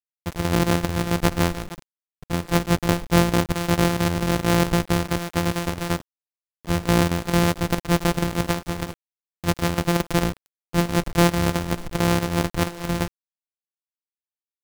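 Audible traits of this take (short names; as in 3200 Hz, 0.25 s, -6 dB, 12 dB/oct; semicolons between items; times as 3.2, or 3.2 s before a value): a buzz of ramps at a fixed pitch in blocks of 256 samples; chopped level 4.5 Hz, depth 65%, duty 85%; a quantiser's noise floor 6-bit, dither none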